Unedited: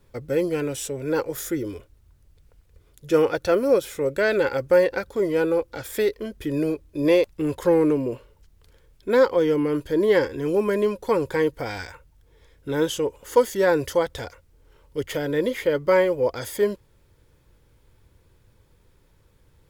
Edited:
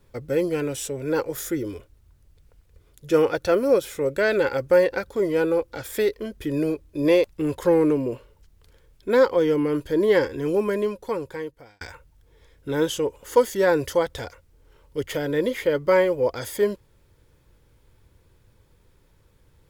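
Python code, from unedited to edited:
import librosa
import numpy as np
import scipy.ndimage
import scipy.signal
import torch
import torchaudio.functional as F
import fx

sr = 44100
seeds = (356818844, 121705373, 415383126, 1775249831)

y = fx.edit(x, sr, fx.fade_out_span(start_s=10.49, length_s=1.32), tone=tone)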